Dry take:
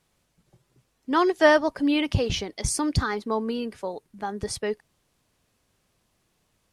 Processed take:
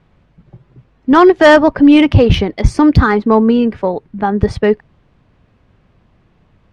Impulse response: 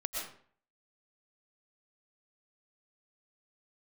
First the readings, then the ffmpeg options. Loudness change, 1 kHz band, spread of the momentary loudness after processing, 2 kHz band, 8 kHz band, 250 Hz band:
+14.0 dB, +12.5 dB, 12 LU, +11.0 dB, no reading, +16.5 dB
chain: -af "bass=f=250:g=7,treble=f=4000:g=-9,adynamicsmooth=sensitivity=1:basefreq=3400,apsyclip=6.68,volume=0.841"

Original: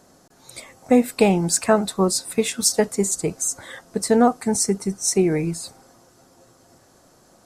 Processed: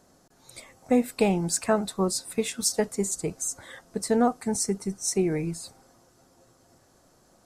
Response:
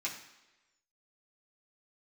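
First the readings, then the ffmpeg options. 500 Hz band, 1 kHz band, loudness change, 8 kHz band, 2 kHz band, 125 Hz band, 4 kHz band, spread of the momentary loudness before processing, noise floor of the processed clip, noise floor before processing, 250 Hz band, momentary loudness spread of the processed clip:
-6.5 dB, -6.5 dB, -6.5 dB, -6.5 dB, -6.5 dB, -5.5 dB, -6.5 dB, 15 LU, -61 dBFS, -55 dBFS, -6.0 dB, 11 LU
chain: -af "lowshelf=f=66:g=6.5,volume=0.473"

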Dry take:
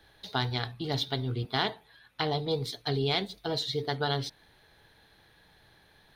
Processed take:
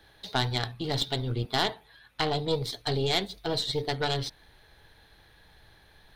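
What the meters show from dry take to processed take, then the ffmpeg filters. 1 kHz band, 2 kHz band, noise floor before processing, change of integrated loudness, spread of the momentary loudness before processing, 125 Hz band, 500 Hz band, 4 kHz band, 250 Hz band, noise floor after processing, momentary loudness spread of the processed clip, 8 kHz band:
+1.5 dB, +1.5 dB, -62 dBFS, +2.0 dB, 5 LU, +1.0 dB, +1.5 dB, +2.5 dB, +1.0 dB, -59 dBFS, 5 LU, +6.5 dB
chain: -af "asubboost=boost=2.5:cutoff=91,acontrast=56,aeval=exprs='(tanh(5.01*val(0)+0.7)-tanh(0.7))/5.01':c=same"

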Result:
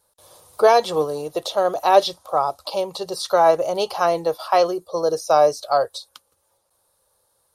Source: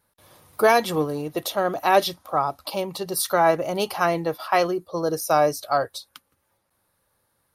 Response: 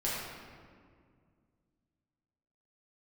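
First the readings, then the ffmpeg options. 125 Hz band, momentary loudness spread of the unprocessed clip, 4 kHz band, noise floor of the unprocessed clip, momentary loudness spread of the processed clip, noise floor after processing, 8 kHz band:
-5.5 dB, 9 LU, +2.0 dB, -72 dBFS, 10 LU, -68 dBFS, -3.0 dB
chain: -filter_complex "[0:a]equalizer=f=125:t=o:w=1:g=-4,equalizer=f=250:t=o:w=1:g=-9,equalizer=f=500:t=o:w=1:g=7,equalizer=f=1000:t=o:w=1:g=3,equalizer=f=2000:t=o:w=1:g=-8,equalizer=f=4000:t=o:w=1:g=4,equalizer=f=8000:t=o:w=1:g=10,acrossover=split=5200[s0][s1];[s1]acompressor=threshold=0.00708:ratio=4:attack=1:release=60[s2];[s0][s2]amix=inputs=2:normalize=0"

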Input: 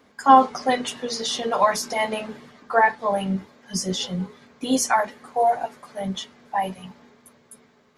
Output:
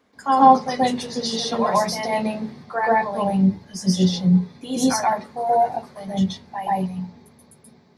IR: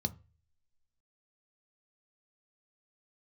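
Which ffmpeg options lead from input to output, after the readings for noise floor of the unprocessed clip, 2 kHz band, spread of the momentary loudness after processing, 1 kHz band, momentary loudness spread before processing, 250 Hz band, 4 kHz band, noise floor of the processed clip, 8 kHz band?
-58 dBFS, -3.0 dB, 13 LU, +1.5 dB, 15 LU, +7.0 dB, +0.5 dB, -54 dBFS, -1.5 dB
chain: -filter_complex "[0:a]asplit=2[s0][s1];[1:a]atrim=start_sample=2205,adelay=130[s2];[s1][s2]afir=irnorm=-1:irlink=0,volume=1.33[s3];[s0][s3]amix=inputs=2:normalize=0,volume=0.473"

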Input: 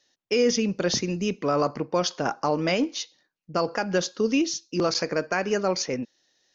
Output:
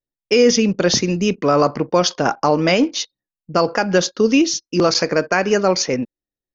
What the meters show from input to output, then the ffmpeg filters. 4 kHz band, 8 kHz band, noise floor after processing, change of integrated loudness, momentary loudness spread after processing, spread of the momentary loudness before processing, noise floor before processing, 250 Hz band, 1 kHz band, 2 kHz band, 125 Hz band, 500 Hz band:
+8.5 dB, no reading, under -85 dBFS, +8.5 dB, 6 LU, 6 LU, -74 dBFS, +8.5 dB, +8.5 dB, +8.5 dB, +8.5 dB, +8.5 dB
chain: -af "anlmdn=0.0158,volume=2.66"

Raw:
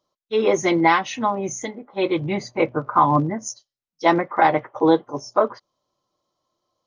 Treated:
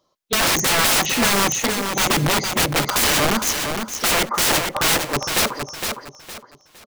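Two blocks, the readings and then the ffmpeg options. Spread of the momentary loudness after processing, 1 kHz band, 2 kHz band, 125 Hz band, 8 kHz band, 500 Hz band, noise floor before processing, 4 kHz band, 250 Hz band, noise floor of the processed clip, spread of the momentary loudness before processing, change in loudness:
11 LU, -2.5 dB, +7.0 dB, +2.0 dB, +15.5 dB, -4.0 dB, under -85 dBFS, +15.5 dB, -2.5 dB, -56 dBFS, 11 LU, +3.0 dB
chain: -af "aeval=exprs='(mod(11.2*val(0)+1,2)-1)/11.2':c=same,aecho=1:1:461|922|1383|1844:0.501|0.15|0.0451|0.0135,volume=2.51"

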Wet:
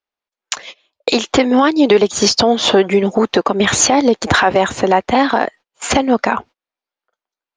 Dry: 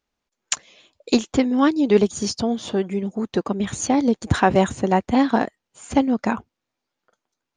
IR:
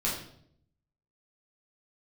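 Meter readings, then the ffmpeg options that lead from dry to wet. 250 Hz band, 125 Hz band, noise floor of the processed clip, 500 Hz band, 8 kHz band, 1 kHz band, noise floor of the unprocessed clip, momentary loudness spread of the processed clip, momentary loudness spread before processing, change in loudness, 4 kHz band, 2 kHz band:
+3.5 dB, +1.5 dB, under -85 dBFS, +8.0 dB, +11.0 dB, +8.0 dB, -83 dBFS, 12 LU, 9 LU, +7.0 dB, +13.5 dB, +11.0 dB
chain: -filter_complex "[0:a]agate=range=0.0282:threshold=0.00794:ratio=16:detection=peak,acrossover=split=400 5900:gain=0.2 1 0.1[s0][s1][s2];[s0][s1][s2]amix=inputs=3:normalize=0,acompressor=threshold=0.0158:ratio=3,alimiter=level_in=21.1:limit=0.891:release=50:level=0:latency=1,volume=0.891"

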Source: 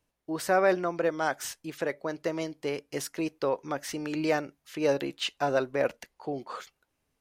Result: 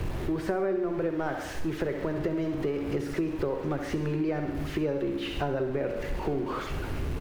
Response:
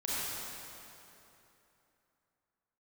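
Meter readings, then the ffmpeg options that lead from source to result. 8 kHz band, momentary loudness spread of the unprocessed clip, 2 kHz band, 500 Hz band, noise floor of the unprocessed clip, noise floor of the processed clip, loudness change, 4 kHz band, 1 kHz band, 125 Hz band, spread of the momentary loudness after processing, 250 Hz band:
-10.0 dB, 11 LU, -4.5 dB, -1.0 dB, -79 dBFS, -36 dBFS, -0.5 dB, -5.0 dB, -4.5 dB, +9.0 dB, 4 LU, +4.0 dB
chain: -filter_complex "[0:a]aeval=exprs='val(0)+0.5*0.0251*sgn(val(0))':c=same,equalizer=f=370:t=o:w=0.47:g=10,aecho=1:1:67|134|201|268|335|402|469:0.299|0.17|0.097|0.0553|0.0315|0.018|0.0102,acrossover=split=140|2400[s0][s1][s2];[s0]acontrast=82[s3];[s2]asoftclip=type=tanh:threshold=0.0224[s4];[s3][s1][s4]amix=inputs=3:normalize=0,bass=f=250:g=8,treble=f=4000:g=-13,bandreject=f=60:t=h:w=6,bandreject=f=120:t=h:w=6,bandreject=f=180:t=h:w=6,bandreject=f=240:t=h:w=6,bandreject=f=300:t=h:w=6,asplit=2[s5][s6];[1:a]atrim=start_sample=2205,afade=t=out:st=0.17:d=0.01,atrim=end_sample=7938[s7];[s6][s7]afir=irnorm=-1:irlink=0,volume=0.335[s8];[s5][s8]amix=inputs=2:normalize=0,acompressor=threshold=0.0631:ratio=6,volume=0.794"

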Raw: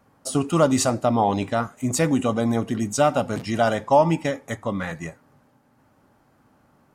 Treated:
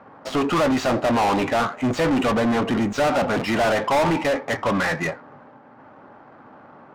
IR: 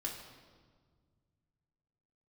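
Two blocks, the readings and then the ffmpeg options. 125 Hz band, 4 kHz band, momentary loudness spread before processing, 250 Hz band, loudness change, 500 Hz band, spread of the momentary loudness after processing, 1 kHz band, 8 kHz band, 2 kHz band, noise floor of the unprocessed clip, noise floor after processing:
-3.0 dB, +4.0 dB, 10 LU, +1.0 dB, +1.0 dB, +0.5 dB, 4 LU, +1.5 dB, -7.5 dB, +7.0 dB, -61 dBFS, -48 dBFS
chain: -filter_complex "[0:a]asplit=2[s0][s1];[s1]highpass=f=720:p=1,volume=44.7,asoftclip=type=tanh:threshold=0.531[s2];[s0][s2]amix=inputs=2:normalize=0,lowpass=f=2400:p=1,volume=0.501,adynamicsmooth=sensitivity=1.5:basefreq=1800,volume=0.473"

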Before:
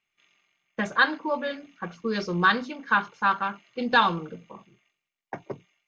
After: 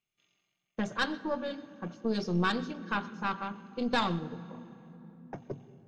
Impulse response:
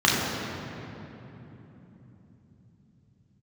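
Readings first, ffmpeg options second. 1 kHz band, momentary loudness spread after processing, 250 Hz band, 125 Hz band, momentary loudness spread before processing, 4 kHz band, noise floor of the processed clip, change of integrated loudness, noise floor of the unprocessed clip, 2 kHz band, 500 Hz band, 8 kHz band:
-10.0 dB, 18 LU, -1.5 dB, -0.5 dB, 19 LU, -6.5 dB, -84 dBFS, -8.0 dB, -85 dBFS, -11.5 dB, -4.5 dB, no reading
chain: -filter_complex "[0:a]equalizer=f=125:t=o:w=1:g=6,equalizer=f=1000:t=o:w=1:g=-5,equalizer=f=2000:t=o:w=1:g=-9,aeval=exprs='(tanh(7.08*val(0)+0.7)-tanh(0.7))/7.08':c=same,asplit=2[s0][s1];[1:a]atrim=start_sample=2205,adelay=91[s2];[s1][s2]afir=irnorm=-1:irlink=0,volume=0.0158[s3];[s0][s3]amix=inputs=2:normalize=0"

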